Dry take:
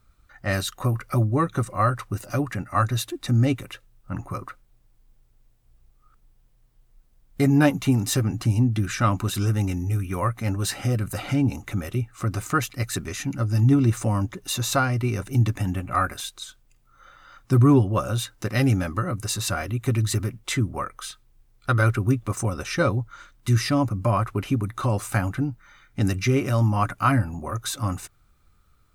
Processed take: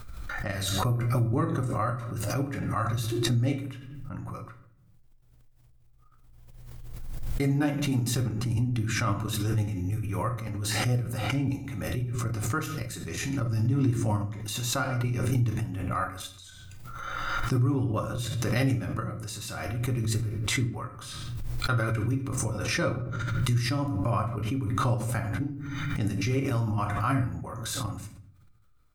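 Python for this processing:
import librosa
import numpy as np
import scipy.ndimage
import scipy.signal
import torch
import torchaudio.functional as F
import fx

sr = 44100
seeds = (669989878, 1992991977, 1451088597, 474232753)

y = fx.level_steps(x, sr, step_db=11)
y = fx.room_shoebox(y, sr, seeds[0], volume_m3=80.0, walls='mixed', distance_m=0.5)
y = fx.pre_swell(y, sr, db_per_s=25.0)
y = y * 10.0 ** (-6.0 / 20.0)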